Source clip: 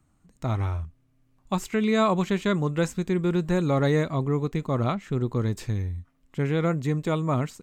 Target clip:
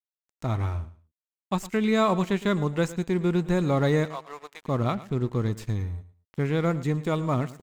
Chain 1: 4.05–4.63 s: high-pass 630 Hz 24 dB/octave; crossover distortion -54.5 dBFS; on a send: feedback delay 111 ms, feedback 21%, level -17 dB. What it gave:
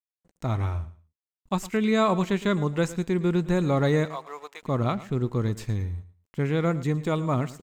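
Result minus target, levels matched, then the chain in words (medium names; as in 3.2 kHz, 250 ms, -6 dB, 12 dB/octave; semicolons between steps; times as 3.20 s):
crossover distortion: distortion -8 dB
4.05–4.63 s: high-pass 630 Hz 24 dB/octave; crossover distortion -45.5 dBFS; on a send: feedback delay 111 ms, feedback 21%, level -17 dB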